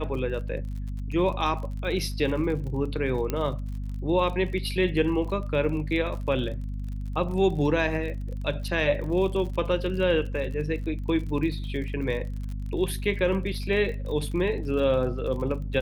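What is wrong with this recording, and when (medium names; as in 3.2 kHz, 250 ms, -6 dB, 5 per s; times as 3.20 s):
crackle 40 per s -35 dBFS
hum 50 Hz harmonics 5 -32 dBFS
3.30 s: pop -14 dBFS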